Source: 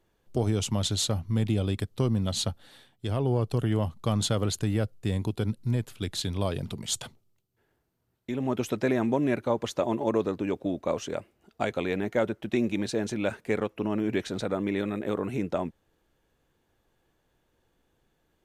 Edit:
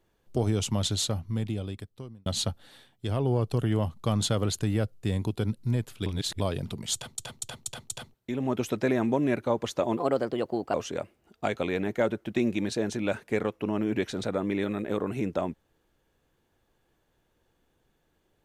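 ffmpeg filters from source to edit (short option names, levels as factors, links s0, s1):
-filter_complex "[0:a]asplit=11[s0][s1][s2][s3][s4][s5][s6][s7][s8][s9][s10];[s0]atrim=end=2.26,asetpts=PTS-STARTPTS,afade=t=out:st=0.88:d=1.38[s11];[s1]atrim=start=2.26:end=6.062,asetpts=PTS-STARTPTS,afade=t=in:d=0.004:c=hsin[s12];[s2]atrim=start=6.058:end=6.402,asetpts=PTS-STARTPTS,areverse[s13];[s3]atrim=start=6.398:end=7.182[s14];[s4]atrim=start=6.938:end=7.182[s15];[s5]atrim=start=6.938:end=7.182[s16];[s6]atrim=start=6.938:end=7.182[s17];[s7]atrim=start=6.938:end=7.182[s18];[s8]atrim=start=8.138:end=9.974[s19];[s9]atrim=start=9.97:end=10.91,asetpts=PTS-STARTPTS,asetrate=53802,aresample=44100[s20];[s10]atrim=start=10.906[s21];[s11][s12]concat=n=2:v=0:a=1[s22];[s22][s13]acrossfade=d=0.004:c1=hsin:c2=hsin[s23];[s23][s14]acrossfade=d=0.004:c1=hsin:c2=hsin[s24];[s24][s15]acrossfade=d=0.004:c1=hsin:c2=hsin[s25];[s25][s16]acrossfade=d=0.004:c1=hsin:c2=hsin[s26];[s26][s17]acrossfade=d=0.004:c1=hsin:c2=hsin[s27];[s27][s18]acrossfade=d=0.004:c1=hsin:c2=hsin[s28];[s28][s19]acrossfade=d=0.004:c1=hsin:c2=hsin[s29];[s29][s20]acrossfade=d=0.004:c1=hsin:c2=hsin[s30];[s30][s21]acrossfade=d=0.004:c1=hsin:c2=hsin"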